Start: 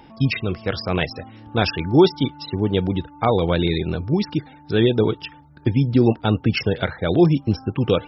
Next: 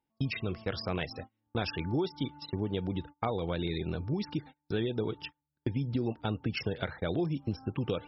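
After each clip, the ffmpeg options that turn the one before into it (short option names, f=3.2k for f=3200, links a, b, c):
-af "agate=range=-31dB:threshold=-33dB:ratio=16:detection=peak,acompressor=threshold=-20dB:ratio=6,volume=-8dB"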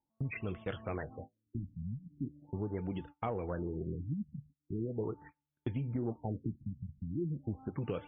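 -filter_complex "[0:a]flanger=delay=1.1:depth=8.1:regen=-71:speed=0.42:shape=sinusoidal,asplit=2[a][b];[b]asoftclip=type=tanh:threshold=-33.5dB,volume=-5.5dB[c];[a][c]amix=inputs=2:normalize=0,afftfilt=real='re*lt(b*sr/1024,240*pow(3700/240,0.5+0.5*sin(2*PI*0.4*pts/sr)))':imag='im*lt(b*sr/1024,240*pow(3700/240,0.5+0.5*sin(2*PI*0.4*pts/sr)))':win_size=1024:overlap=0.75,volume=-2.5dB"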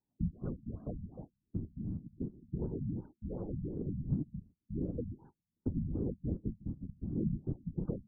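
-af "equalizer=f=160:t=o:w=2.9:g=13.5,afftfilt=real='hypot(re,im)*cos(2*PI*random(0))':imag='hypot(re,im)*sin(2*PI*random(1))':win_size=512:overlap=0.75,afftfilt=real='re*lt(b*sr/1024,230*pow(1700/230,0.5+0.5*sin(2*PI*2.7*pts/sr)))':imag='im*lt(b*sr/1024,230*pow(1700/230,0.5+0.5*sin(2*PI*2.7*pts/sr)))':win_size=1024:overlap=0.75,volume=-4.5dB"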